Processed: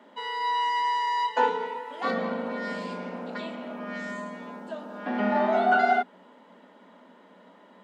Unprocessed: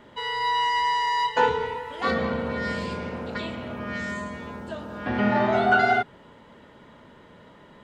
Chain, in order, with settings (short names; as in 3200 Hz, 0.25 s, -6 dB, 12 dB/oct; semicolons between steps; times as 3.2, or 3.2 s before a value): rippled Chebyshev high-pass 180 Hz, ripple 6 dB